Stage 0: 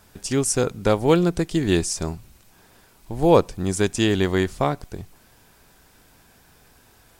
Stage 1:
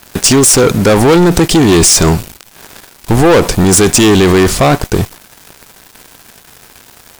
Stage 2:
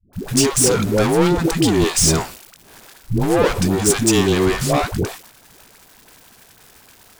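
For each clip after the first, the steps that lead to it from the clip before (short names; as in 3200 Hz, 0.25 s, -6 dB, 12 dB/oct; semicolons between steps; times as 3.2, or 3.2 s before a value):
low shelf 130 Hz -7.5 dB; in parallel at 0 dB: negative-ratio compressor -29 dBFS, ratio -1; on the sum: sample leveller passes 5
dispersion highs, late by 0.132 s, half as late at 410 Hz; gain -8.5 dB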